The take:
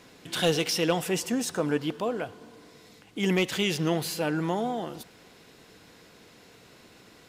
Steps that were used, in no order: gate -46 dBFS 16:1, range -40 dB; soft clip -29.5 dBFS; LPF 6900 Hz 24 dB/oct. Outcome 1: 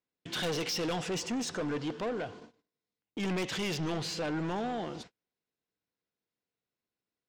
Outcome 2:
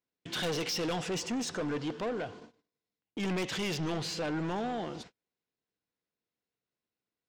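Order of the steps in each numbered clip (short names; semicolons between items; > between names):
LPF > gate > soft clip; gate > LPF > soft clip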